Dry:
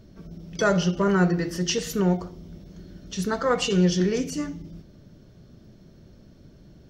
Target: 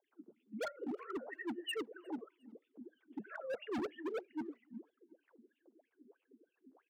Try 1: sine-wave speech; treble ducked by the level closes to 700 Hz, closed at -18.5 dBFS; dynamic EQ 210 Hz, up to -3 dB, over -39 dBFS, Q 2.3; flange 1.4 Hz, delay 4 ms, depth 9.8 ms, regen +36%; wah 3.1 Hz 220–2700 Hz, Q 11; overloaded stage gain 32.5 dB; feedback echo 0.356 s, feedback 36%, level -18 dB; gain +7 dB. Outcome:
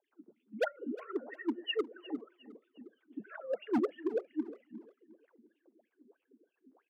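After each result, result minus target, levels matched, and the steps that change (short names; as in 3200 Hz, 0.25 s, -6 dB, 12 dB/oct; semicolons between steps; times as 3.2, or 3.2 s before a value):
echo-to-direct +12 dB; overloaded stage: distortion -6 dB
change: feedback echo 0.356 s, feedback 36%, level -30 dB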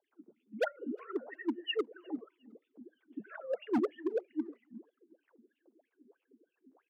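overloaded stage: distortion -6 dB
change: overloaded stage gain 43 dB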